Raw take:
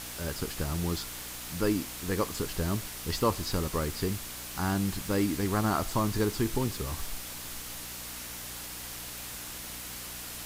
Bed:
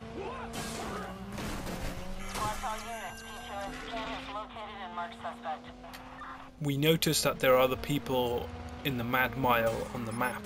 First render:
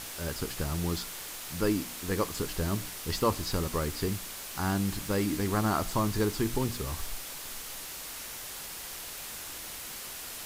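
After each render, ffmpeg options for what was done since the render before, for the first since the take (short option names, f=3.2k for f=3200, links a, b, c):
-af "bandreject=f=60:t=h:w=4,bandreject=f=120:t=h:w=4,bandreject=f=180:t=h:w=4,bandreject=f=240:t=h:w=4,bandreject=f=300:t=h:w=4"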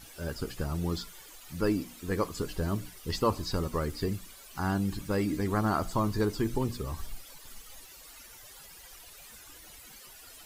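-af "afftdn=nr=14:nf=-41"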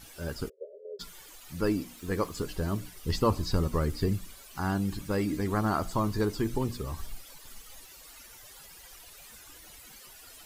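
-filter_complex "[0:a]asplit=3[a][b][c];[a]afade=t=out:st=0.48:d=0.02[d];[b]asuperpass=centerf=490:order=20:qfactor=2.1,afade=t=in:st=0.48:d=0.02,afade=t=out:st=0.99:d=0.02[e];[c]afade=t=in:st=0.99:d=0.02[f];[d][e][f]amix=inputs=3:normalize=0,asettb=1/sr,asplit=3[g][h][i];[g]atrim=end=1.974[j];[h]atrim=start=1.97:end=2.45,asetpts=PTS-STARTPTS,afade=t=in:d=0.004:c=qsin,afade=t=out:st=0.476:d=0.004:c=qsin,aeval=exprs='val(0)*gte(abs(val(0)),0.00251)':c=same[k];[i]atrim=start=2.446[l];[j][k]acrossfade=d=0.004:c1=hsin:c2=qsin[m];[m][l]acrossfade=d=0.004:c1=qsin:c2=hsin,asettb=1/sr,asplit=3[n][o][p];[n]atrim=end=2.964[q];[o]atrim=start=2.96:end=4.43,asetpts=PTS-STARTPTS,afade=t=in:d=0.004:c=qsin,afade=t=out:st=1.466:d=0.004:c=qsin,lowshelf=f=220:g=6.5[r];[p]atrim=start=4.426[s];[q][r]acrossfade=d=0.004:c1=hsin:c2=qsin[t];[t][s]acrossfade=d=0.004:c1=qsin:c2=hsin"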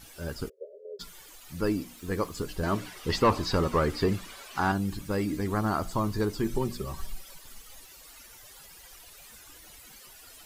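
-filter_complex "[0:a]asettb=1/sr,asplit=3[a][b][c];[a]atrim=end=2.634[d];[b]atrim=start=2.63:end=4.72,asetpts=PTS-STARTPTS,afade=t=in:d=0.004:c=qsin,afade=t=out:st=2.086:d=0.004:c=qsin,asplit=2[e][f];[f]highpass=f=720:p=1,volume=18dB,asoftclip=type=tanh:threshold=-11.5dB[g];[e][g]amix=inputs=2:normalize=0,lowpass=f=2.1k:p=1,volume=-6dB[h];[c]atrim=start=4.716[i];[d][h]acrossfade=d=0.004:c1=hsin:c2=qsin[j];[j][i]acrossfade=d=0.004:c1=qsin:c2=hsin,asettb=1/sr,asplit=3[k][l][m];[k]atrim=end=6.434[n];[l]atrim=start=6.43:end=7.4,asetpts=PTS-STARTPTS,afade=t=in:d=0.004:c=qsin,afade=t=out:st=0.966:d=0.004:c=qsin,aecho=1:1:5.3:0.58,atrim=end_sample=42777[o];[m]atrim=start=7.396[p];[n][o]acrossfade=d=0.004:c1=hsin:c2=qsin[q];[q][p]acrossfade=d=0.004:c1=qsin:c2=hsin"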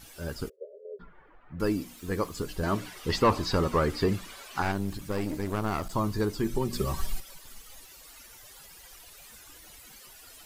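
-filter_complex "[0:a]asettb=1/sr,asplit=3[a][b][c];[a]atrim=end=0.564[d];[b]atrim=start=0.56:end=1.6,asetpts=PTS-STARTPTS,afade=t=in:d=0.004:c=qsin,afade=t=out:st=1.036:d=0.004:c=qsin,lowpass=f=1.7k:w=0.5412,lowpass=f=1.7k:w=1.3066[e];[c]atrim=start=1.596[f];[d][e]acrossfade=d=0.004:c1=hsin:c2=qsin[g];[g][f]acrossfade=d=0.004:c1=qsin:c2=hsin,asettb=1/sr,asplit=3[h][i][j];[h]atrim=end=4.624[k];[i]atrim=start=4.62:end=5.94,asetpts=PTS-STARTPTS,afade=t=in:d=0.004:c=qsin,afade=t=out:st=1.316:d=0.004:c=qsin,aeval=exprs='clip(val(0),-1,0.015)':c=same[l];[j]atrim=start=5.936[m];[k][l]acrossfade=d=0.004:c1=hsin:c2=qsin[n];[n][m]acrossfade=d=0.004:c1=qsin:c2=hsin,asplit=3[o][p][q];[o]atrim=end=6.732[r];[p]atrim=start=6.728:end=7.202,asetpts=PTS-STARTPTS,volume=6dB[s];[q]atrim=start=7.198[t];[r][s]acrossfade=d=0.004:c1=hsin:c2=hsin[u];[u][t]acrossfade=d=0.004:c1=hsin:c2=hsin"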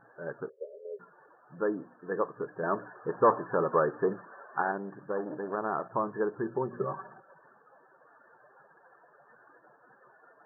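-af "afftfilt=real='re*between(b*sr/4096,110,1800)':imag='im*between(b*sr/4096,110,1800)':win_size=4096:overlap=0.75,lowshelf=f=340:t=q:w=1.5:g=-7"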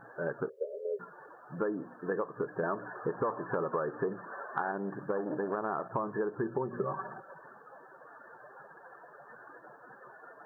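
-filter_complex "[0:a]asplit=2[a][b];[b]alimiter=limit=-23dB:level=0:latency=1:release=99,volume=2dB[c];[a][c]amix=inputs=2:normalize=0,acompressor=threshold=-30dB:ratio=5"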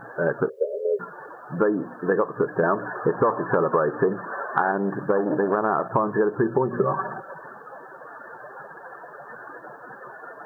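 -af "volume=11.5dB"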